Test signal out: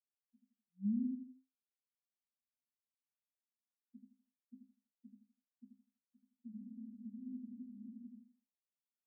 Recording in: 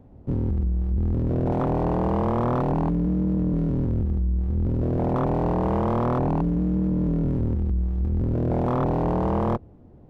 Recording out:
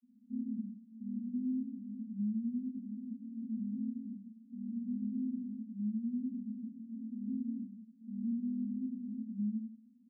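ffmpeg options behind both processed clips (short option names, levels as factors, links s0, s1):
-filter_complex "[0:a]asuperpass=centerf=230:order=20:qfactor=3.7,asplit=2[s0][s1];[s1]aecho=0:1:82|164|246|328:0.631|0.189|0.0568|0.017[s2];[s0][s2]amix=inputs=2:normalize=0,flanger=delay=2.7:depth=5:regen=59:speed=0.34:shape=sinusoidal,alimiter=level_in=1.88:limit=0.0631:level=0:latency=1:release=367,volume=0.531"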